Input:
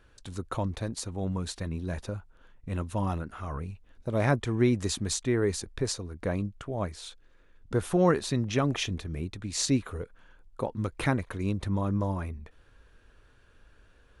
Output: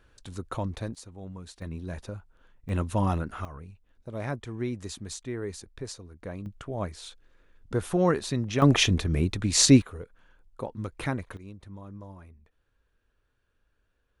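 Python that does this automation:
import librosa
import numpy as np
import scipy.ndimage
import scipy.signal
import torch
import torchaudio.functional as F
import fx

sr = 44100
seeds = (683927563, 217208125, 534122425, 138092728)

y = fx.gain(x, sr, db=fx.steps((0.0, -1.0), (0.95, -10.0), (1.62, -3.0), (2.69, 4.0), (3.45, -8.0), (6.46, -0.5), (8.62, 9.0), (9.82, -3.5), (11.37, -15.0)))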